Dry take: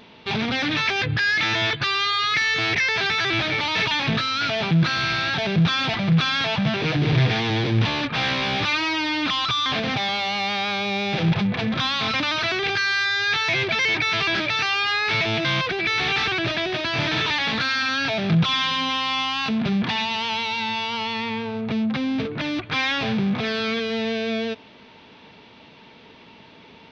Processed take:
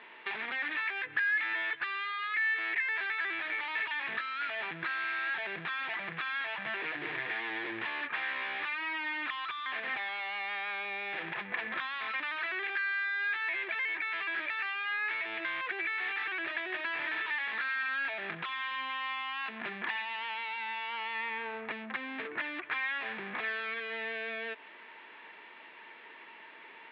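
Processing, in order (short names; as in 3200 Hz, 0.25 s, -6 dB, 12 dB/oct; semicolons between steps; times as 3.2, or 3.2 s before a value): tilt shelf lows -8.5 dB, about 670 Hz; compressor, threshold -26 dBFS, peak gain reduction 13.5 dB; speaker cabinet 310–2600 Hz, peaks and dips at 350 Hz +8 dB, 1000 Hz +4 dB, 1800 Hz +9 dB; gain -8 dB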